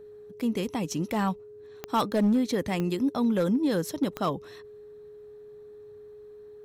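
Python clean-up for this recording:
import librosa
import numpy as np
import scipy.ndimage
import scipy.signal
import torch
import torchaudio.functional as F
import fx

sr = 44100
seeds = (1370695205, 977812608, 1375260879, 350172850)

y = fx.fix_declip(x, sr, threshold_db=-18.5)
y = fx.fix_declick_ar(y, sr, threshold=10.0)
y = fx.notch(y, sr, hz=420.0, q=30.0)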